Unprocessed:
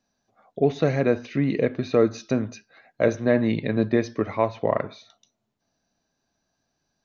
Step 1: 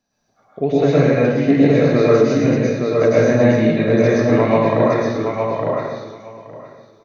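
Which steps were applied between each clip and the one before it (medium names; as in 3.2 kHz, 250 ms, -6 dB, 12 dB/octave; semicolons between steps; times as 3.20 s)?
on a send: feedback delay 866 ms, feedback 16%, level -4 dB; on the sum: plate-style reverb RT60 1.1 s, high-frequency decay 0.75×, pre-delay 95 ms, DRR -7 dB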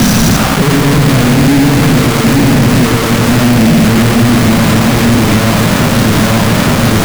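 one-bit comparator; resonant low shelf 320 Hz +12.5 dB, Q 1.5; companded quantiser 2-bit; trim -5 dB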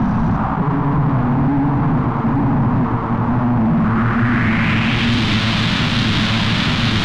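peaking EQ 510 Hz -11 dB 1.1 oct; low-pass sweep 940 Hz -> 3.6 kHz, 3.67–5.16 s; trim -6.5 dB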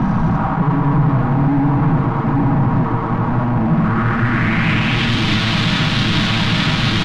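comb 6.3 ms, depth 40%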